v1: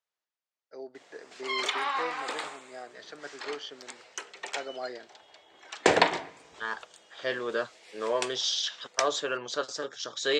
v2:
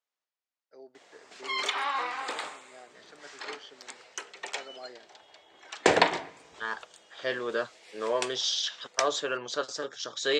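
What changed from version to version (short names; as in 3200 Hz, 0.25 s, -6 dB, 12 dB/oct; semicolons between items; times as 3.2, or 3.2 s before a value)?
first voice -8.0 dB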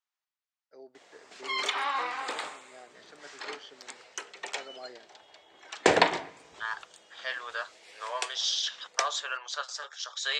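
second voice: add HPF 780 Hz 24 dB/oct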